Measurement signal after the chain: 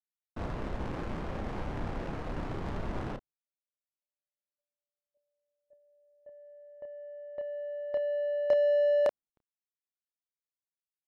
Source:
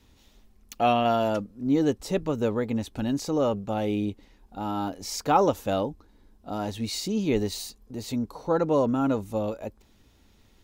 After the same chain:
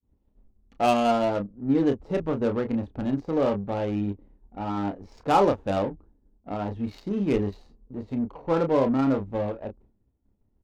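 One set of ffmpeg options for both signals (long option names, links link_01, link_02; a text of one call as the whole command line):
ffmpeg -i in.wav -filter_complex "[0:a]asplit=2[link_01][link_02];[link_02]adelay=30,volume=-5.5dB[link_03];[link_01][link_03]amix=inputs=2:normalize=0,agate=range=-33dB:threshold=-49dB:ratio=3:detection=peak,adynamicsmooth=sensitivity=2.5:basefreq=630" out.wav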